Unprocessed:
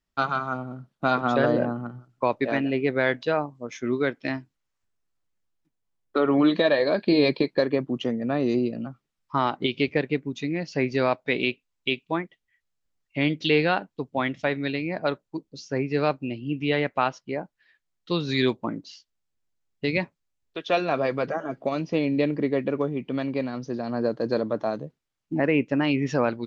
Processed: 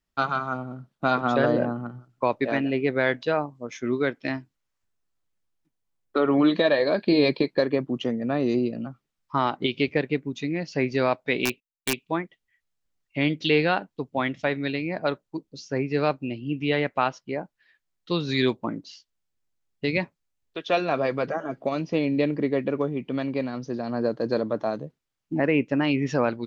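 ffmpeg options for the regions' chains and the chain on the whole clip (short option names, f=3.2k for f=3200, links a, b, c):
-filter_complex "[0:a]asettb=1/sr,asplit=3[a][b][c];[a]atrim=end=11.454[d];[b]atrim=start=11.45:end=11.98,asetpts=PTS-STARTPTS,afade=t=in:d=0.004:c=qsin,afade=t=out:st=0.526:d=0.004:c=qsin,agate=range=-23dB:threshold=-54dB:ratio=16:release=100:detection=peak,aeval=exprs='(mod(5.31*val(0)+1,2)-1)/5.31':c=same,bandreject=f=1.3k:w=6.3[e];[c]atrim=start=11.976[f];[d][e]acrossfade=d=0.004:c1=hsin:c2=qsin[g];[g][f]acrossfade=d=0.004:c1=qsin:c2=hsin"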